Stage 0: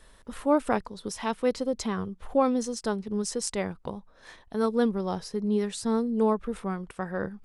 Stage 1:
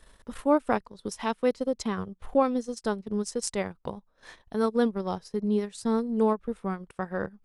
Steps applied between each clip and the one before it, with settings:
transient designer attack +1 dB, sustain −12 dB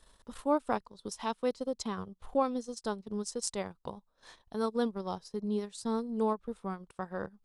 octave-band graphic EQ 1,000/2,000/4,000/8,000 Hz +4/−4/+5/+4 dB
level −7 dB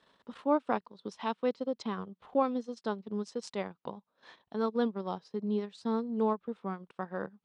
Chebyshev band-pass filter 190–3,100 Hz, order 2
level +1.5 dB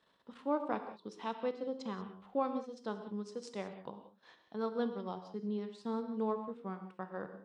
reverb whose tail is shaped and stops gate 210 ms flat, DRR 7.5 dB
level −6 dB

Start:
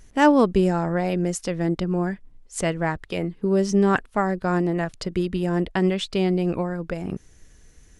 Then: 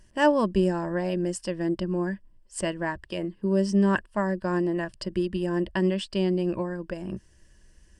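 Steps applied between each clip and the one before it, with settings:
EQ curve with evenly spaced ripples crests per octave 1.3, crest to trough 10 dB
level −6 dB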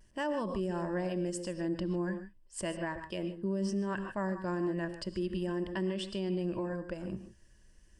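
reverb whose tail is shaped and stops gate 170 ms rising, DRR 10.5 dB
pitch vibrato 0.39 Hz 15 cents
brickwall limiter −20.5 dBFS, peak gain reduction 10.5 dB
level −5.5 dB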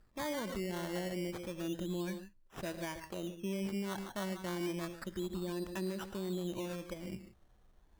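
sample-and-hold swept by an LFO 14×, swing 60% 0.3 Hz
level −4.5 dB

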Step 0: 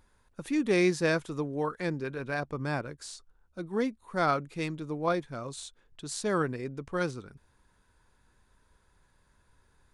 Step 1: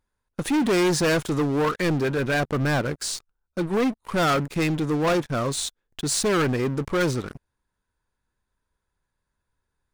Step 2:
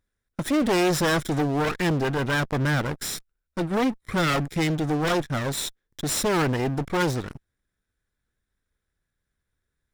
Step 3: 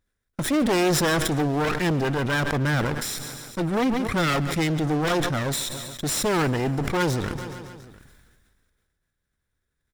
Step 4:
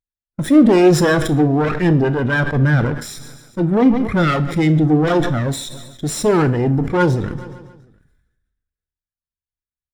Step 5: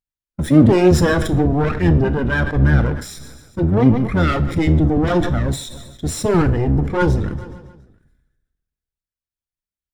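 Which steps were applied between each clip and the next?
leveller curve on the samples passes 5; level −3.5 dB
lower of the sound and its delayed copy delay 0.54 ms
repeating echo 140 ms, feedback 59%, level −21 dB; level that may fall only so fast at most 29 dB per second
four-comb reverb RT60 0.54 s, combs from 26 ms, DRR 10.5 dB; boost into a limiter +11 dB; every bin expanded away from the loudest bin 1.5 to 1; level −1 dB
sub-octave generator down 1 octave, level 0 dB; flanger 1.1 Hz, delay 0.1 ms, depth 5.7 ms, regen −69%; level +2 dB

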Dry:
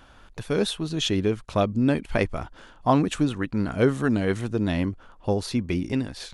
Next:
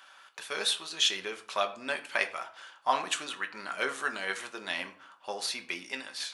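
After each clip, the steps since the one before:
high-pass filter 1,200 Hz 12 dB per octave
convolution reverb RT60 0.55 s, pre-delay 5 ms, DRR 5 dB
level +1.5 dB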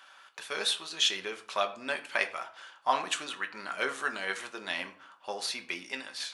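high-shelf EQ 9,700 Hz −4 dB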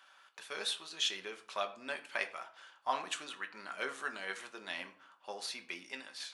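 high-pass filter 110 Hz
level −7 dB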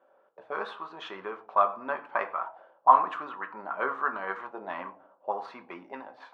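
envelope-controlled low-pass 470–1,100 Hz up, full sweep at −39.5 dBFS
level +7 dB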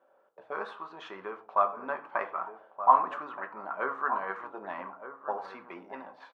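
dynamic equaliser 3,400 Hz, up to −5 dB, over −51 dBFS, Q 1.7
slap from a distant wall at 210 metres, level −10 dB
level −2 dB

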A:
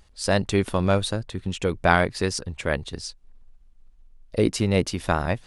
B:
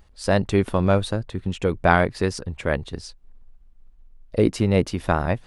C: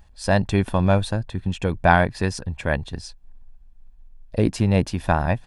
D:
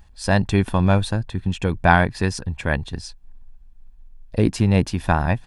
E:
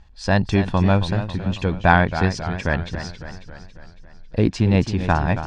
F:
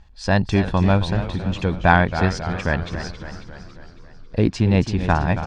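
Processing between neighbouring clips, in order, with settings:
parametric band 7,400 Hz −8 dB 2.8 octaves; level +2.5 dB
comb filter 1.2 ms, depth 42%
parametric band 590 Hz −4.5 dB 0.57 octaves; level +2 dB
low-pass filter 6,300 Hz 24 dB per octave; feedback echo with a swinging delay time 275 ms, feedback 57%, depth 108 cents, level −11 dB
echo with shifted repeats 331 ms, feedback 47%, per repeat −140 Hz, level −16 dB

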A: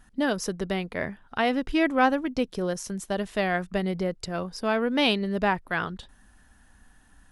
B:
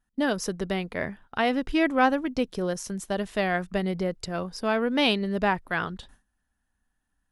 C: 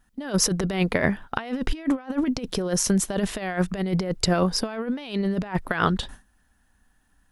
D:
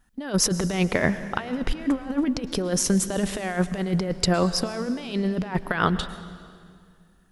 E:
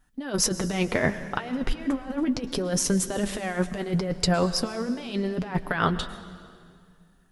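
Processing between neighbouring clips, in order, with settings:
noise gate with hold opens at −42 dBFS
compressor whose output falls as the input rises −31 dBFS, ratio −0.5; level +7.5 dB
convolution reverb RT60 2.1 s, pre-delay 102 ms, DRR 13 dB
flanger 0.71 Hz, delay 6.6 ms, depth 2.7 ms, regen −44%; level +2.5 dB

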